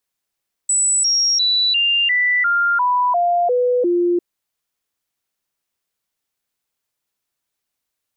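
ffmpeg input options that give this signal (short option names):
-f lavfi -i "aevalsrc='0.211*clip(min(mod(t,0.35),0.35-mod(t,0.35))/0.005,0,1)*sin(2*PI*7910*pow(2,-floor(t/0.35)/2)*mod(t,0.35))':d=3.5:s=44100"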